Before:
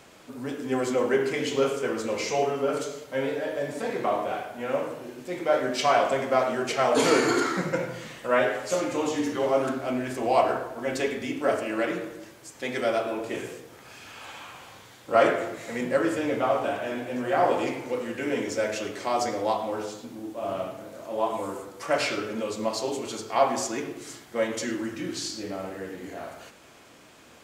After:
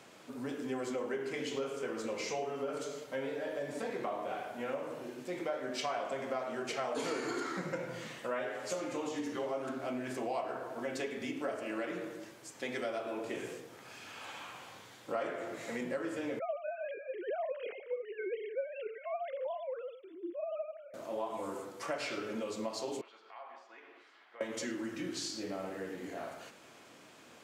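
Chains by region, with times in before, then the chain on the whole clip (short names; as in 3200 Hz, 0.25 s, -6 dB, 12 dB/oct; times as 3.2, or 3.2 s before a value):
16.39–20.94 sine-wave speech + bell 1000 Hz -11.5 dB 0.71 oct + thin delay 0.298 s, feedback 36%, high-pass 1800 Hz, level -20 dB
23.01–24.41 HPF 970 Hz + compressor 3:1, threshold -45 dBFS + air absorption 380 m
whole clip: HPF 120 Hz; high shelf 12000 Hz -5.5 dB; compressor 4:1, threshold -31 dBFS; gain -4 dB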